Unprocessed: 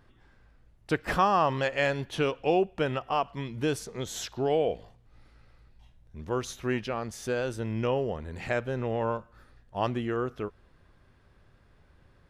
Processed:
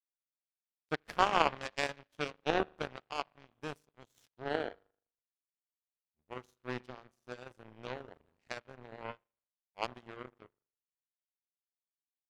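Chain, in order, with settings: spring tank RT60 1.5 s, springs 40 ms, chirp 35 ms, DRR 8 dB; power-law waveshaper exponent 3; trim +4 dB

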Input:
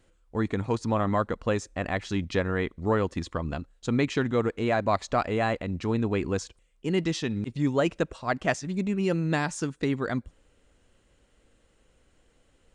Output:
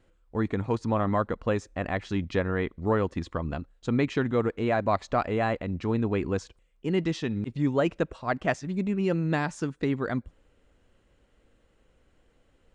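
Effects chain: treble shelf 4.8 kHz -11.5 dB

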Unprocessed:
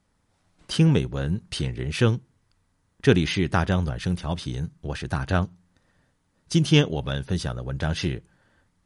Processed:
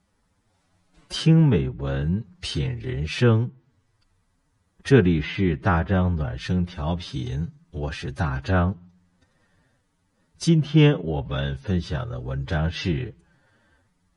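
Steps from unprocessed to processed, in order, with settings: low-pass that closes with the level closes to 2.2 kHz, closed at -19.5 dBFS; time stretch by phase-locked vocoder 1.6×; trim +1.5 dB

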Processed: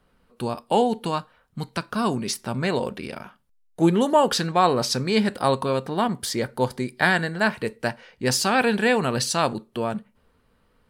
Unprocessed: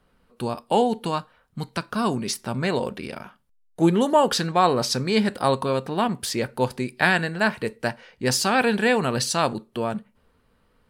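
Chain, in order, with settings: 5.87–7.43 s: band-stop 2.6 kHz, Q 6.7

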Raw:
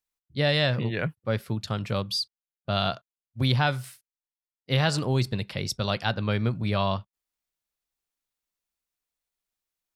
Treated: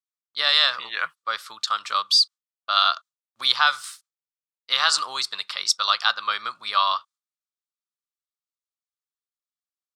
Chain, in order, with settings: gate with hold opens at -50 dBFS; resonant high-pass 1.2 kHz, resonance Q 6.7; high-order bell 5.4 kHz +11 dB

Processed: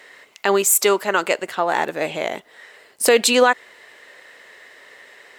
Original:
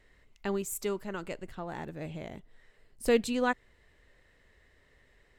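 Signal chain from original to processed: high-pass 540 Hz 12 dB/octave; loudness maximiser +25 dB; trim -3 dB

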